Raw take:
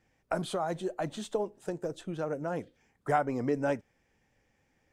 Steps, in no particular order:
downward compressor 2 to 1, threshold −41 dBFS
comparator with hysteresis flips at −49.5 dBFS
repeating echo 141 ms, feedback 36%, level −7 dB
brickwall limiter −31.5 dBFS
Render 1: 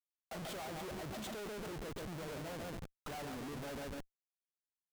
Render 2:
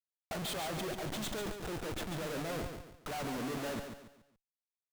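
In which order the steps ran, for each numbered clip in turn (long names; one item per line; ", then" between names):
downward compressor, then repeating echo, then brickwall limiter, then comparator with hysteresis
comparator with hysteresis, then downward compressor, then repeating echo, then brickwall limiter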